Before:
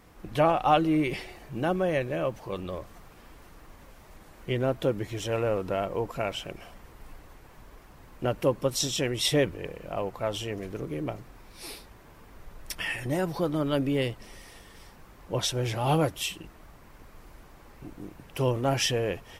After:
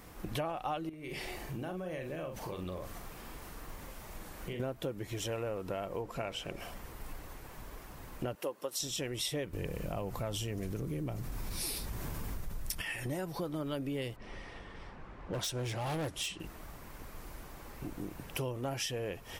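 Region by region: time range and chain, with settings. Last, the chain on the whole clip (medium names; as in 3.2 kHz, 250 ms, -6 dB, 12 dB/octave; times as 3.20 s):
0.89–4.60 s: compression 5:1, threshold -39 dBFS + doubling 44 ms -6 dB
6.02–6.58 s: treble shelf 12 kHz -11.5 dB + de-hum 69.99 Hz, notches 8
8.35–8.80 s: high-pass 400 Hz + band-stop 2.3 kHz, Q 14
9.53–12.82 s: tone controls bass +9 dB, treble +5 dB + level flattener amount 50%
14.16–16.40 s: low-pass 11 kHz 24 dB/octave + level-controlled noise filter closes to 2.1 kHz, open at -24 dBFS + hard clipper -26.5 dBFS
whole clip: treble shelf 7.7 kHz +7.5 dB; compression 5:1, threshold -38 dBFS; trim +2.5 dB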